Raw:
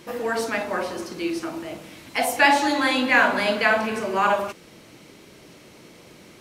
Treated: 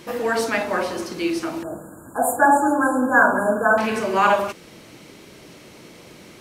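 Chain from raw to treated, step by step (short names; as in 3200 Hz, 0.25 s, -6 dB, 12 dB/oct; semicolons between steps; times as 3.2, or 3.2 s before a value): 1.63–3.78 brick-wall FIR band-stop 1700–6800 Hz; gain +3.5 dB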